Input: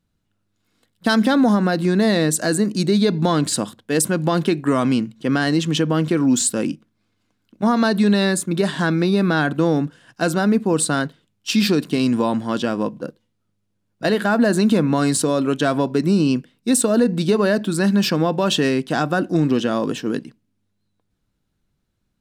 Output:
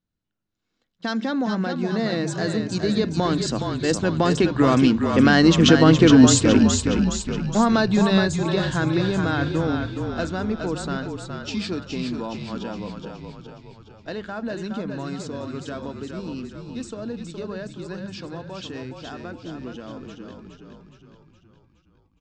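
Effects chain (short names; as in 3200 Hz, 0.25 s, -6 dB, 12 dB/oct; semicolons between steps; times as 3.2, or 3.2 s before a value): Doppler pass-by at 5.95, 6 m/s, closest 5.9 m; steep low-pass 7100 Hz 48 dB/oct; notches 50/100/150/200 Hz; frequency-shifting echo 0.417 s, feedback 54%, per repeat -34 Hz, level -5.5 dB; gain +5 dB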